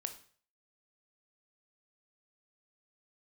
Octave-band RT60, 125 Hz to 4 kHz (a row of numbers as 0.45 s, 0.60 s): 0.55 s, 0.40 s, 0.50 s, 0.45 s, 0.45 s, 0.45 s